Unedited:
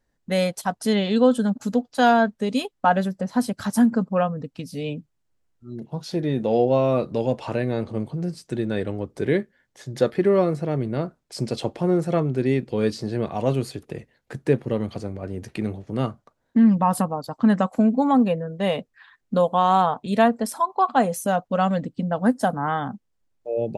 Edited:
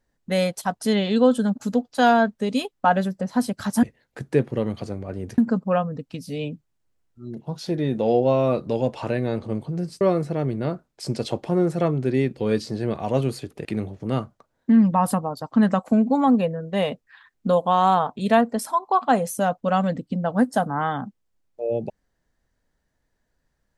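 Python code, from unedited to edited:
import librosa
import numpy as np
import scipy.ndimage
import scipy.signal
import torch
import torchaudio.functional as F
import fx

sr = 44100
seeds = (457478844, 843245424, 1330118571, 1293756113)

y = fx.edit(x, sr, fx.cut(start_s=8.46, length_s=1.87),
    fx.move(start_s=13.97, length_s=1.55, to_s=3.83), tone=tone)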